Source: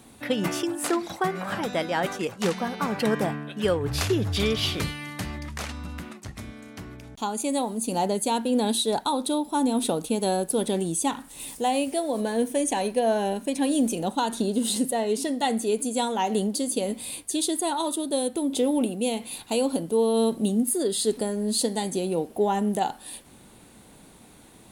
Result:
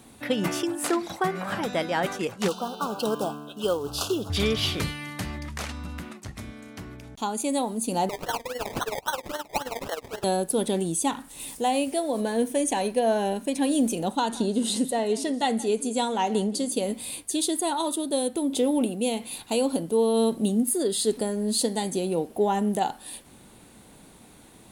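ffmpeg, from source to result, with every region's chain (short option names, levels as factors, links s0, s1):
-filter_complex "[0:a]asettb=1/sr,asplit=3[s0][s1][s2];[s0]atrim=end=2.484[s3];[s1]atrim=start=2.48:end=4.3,asetpts=PTS-STARTPTS,afade=t=in:d=0.004:c=qsin,afade=t=out:st=1.816:d=0.004:c=qsin,equalizer=f=100:w=0.8:g=-15,acrusher=bits=5:mode=log:mix=0:aa=0.000001,asuperstop=centerf=2000:order=8:qfactor=1.5[s4];[s2]atrim=start=4.296[s5];[s3][s4]acrossfade=d=0.004:c1=hsin:c2=qsin[s6];[s6][s5]acrossfade=d=0.004:c1=qsin:c2=hsin,asettb=1/sr,asplit=3[s7][s8][s9];[s7]atrim=end=8.094[s10];[s8]atrim=start=8.09:end=10.24,asetpts=PTS-STARTPTS,afade=t=in:d=0.004:c=qsin,afade=t=out:st=2.146:d=0.004:c=qsin,highpass=f=470:w=0.5412,highpass=f=470:w=1.3066,acrusher=samples=25:mix=1:aa=0.000001:lfo=1:lforange=15:lforate=3.7,tremolo=f=19:d=0.72[s11];[s9]atrim=start=10.236[s12];[s10][s11]acrossfade=d=0.004:c1=hsin:c2=qsin[s13];[s13][s12]acrossfade=d=0.004:c1=qsin:c2=hsin,asettb=1/sr,asplit=3[s14][s15][s16];[s14]atrim=end=14.174[s17];[s15]atrim=start=14.17:end=16.72,asetpts=PTS-STARTPTS,afade=t=in:d=0.004:c=qsin,afade=t=out:st=2.546:d=0.004:c=qsin,lowpass=9600,aecho=1:1:173:0.106,atrim=end_sample=112455[s18];[s16]atrim=start=16.716[s19];[s17][s18]acrossfade=d=0.004:c1=hsin:c2=qsin[s20];[s20][s19]acrossfade=d=0.004:c1=qsin:c2=hsin"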